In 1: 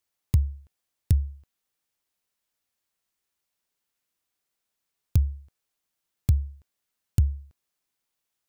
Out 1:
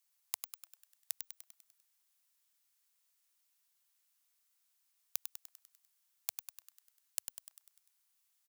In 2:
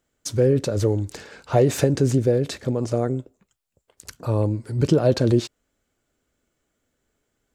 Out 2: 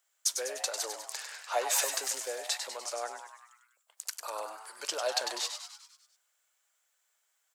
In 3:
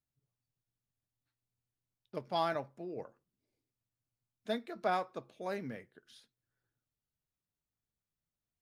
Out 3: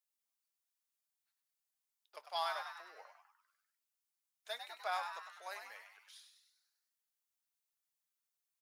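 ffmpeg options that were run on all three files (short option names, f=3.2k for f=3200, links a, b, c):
-filter_complex "[0:a]highpass=f=750:w=0.5412,highpass=f=750:w=1.3066,highshelf=f=4.4k:g=9,asplit=8[a][b][c][d][e][f][g][h];[b]adelay=99,afreqshift=120,volume=-7dB[i];[c]adelay=198,afreqshift=240,volume=-12dB[j];[d]adelay=297,afreqshift=360,volume=-17.1dB[k];[e]adelay=396,afreqshift=480,volume=-22.1dB[l];[f]adelay=495,afreqshift=600,volume=-27.1dB[m];[g]adelay=594,afreqshift=720,volume=-32.2dB[n];[h]adelay=693,afreqshift=840,volume=-37.2dB[o];[a][i][j][k][l][m][n][o]amix=inputs=8:normalize=0,volume=-3.5dB"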